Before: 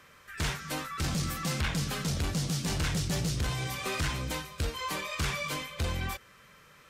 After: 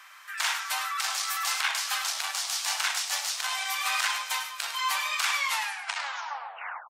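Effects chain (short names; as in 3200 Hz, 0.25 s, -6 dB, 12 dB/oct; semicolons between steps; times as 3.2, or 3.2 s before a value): tape stop at the end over 1.54 s; steep high-pass 750 Hz 48 dB/oct; echo 0.103 s -10 dB; gain +7 dB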